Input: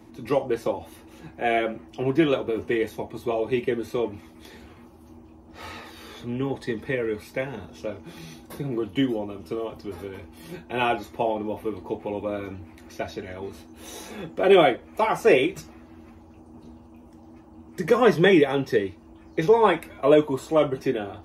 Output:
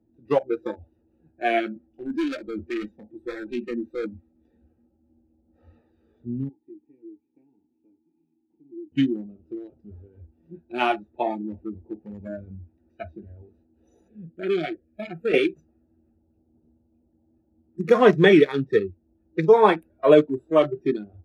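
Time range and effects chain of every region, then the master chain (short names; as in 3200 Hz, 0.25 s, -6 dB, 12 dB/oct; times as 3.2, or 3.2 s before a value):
1.76–5.79 comb 3.8 ms, depth 48% + hard clip -23 dBFS
6.49–8.92 vowel filter u + echo 0.349 s -24 dB
14.08–15.34 fixed phaser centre 2400 Hz, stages 4 + compressor 4:1, threshold -21 dBFS
whole clip: Wiener smoothing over 41 samples; spectral noise reduction 19 dB; high shelf 8300 Hz -8.5 dB; gain +3 dB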